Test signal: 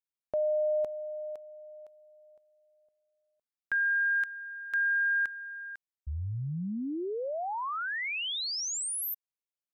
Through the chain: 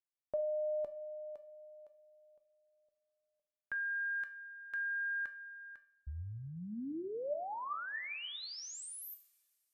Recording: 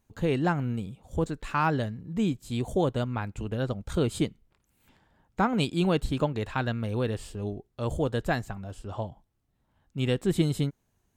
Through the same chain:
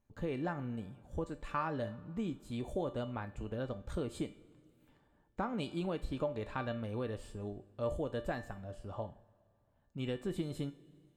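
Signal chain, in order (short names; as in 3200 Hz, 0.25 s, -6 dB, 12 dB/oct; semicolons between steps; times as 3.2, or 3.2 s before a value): high shelf 2300 Hz -8.5 dB; two-slope reverb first 0.35 s, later 2.4 s, from -18 dB, DRR 12.5 dB; dynamic EQ 140 Hz, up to -6 dB, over -40 dBFS, Q 1.3; compressor, threshold -26 dBFS; resonator 590 Hz, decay 0.39 s, mix 80%; gain +7 dB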